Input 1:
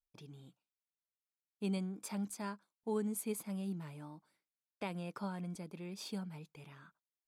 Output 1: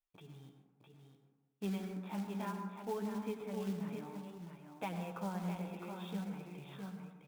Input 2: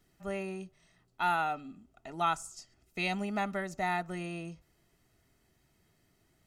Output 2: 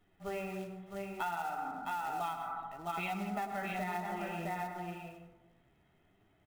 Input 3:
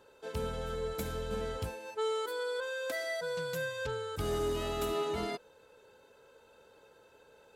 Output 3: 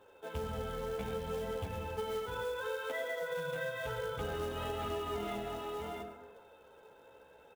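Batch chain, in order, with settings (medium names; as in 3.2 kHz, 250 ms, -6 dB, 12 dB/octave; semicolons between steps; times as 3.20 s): peaking EQ 790 Hz +4.5 dB 0.55 oct; on a send: delay 659 ms -6.5 dB; on the sum: resampled via 8 kHz; flange 0.64 Hz, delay 9.4 ms, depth 8.2 ms, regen +13%; dynamic bell 330 Hz, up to -4 dB, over -57 dBFS, Q 5.6; de-hum 52.99 Hz, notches 5; short-mantissa float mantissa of 2-bit; plate-style reverb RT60 1.1 s, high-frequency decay 0.3×, pre-delay 85 ms, DRR 6.5 dB; compression 10:1, threshold -36 dBFS; trim +2.5 dB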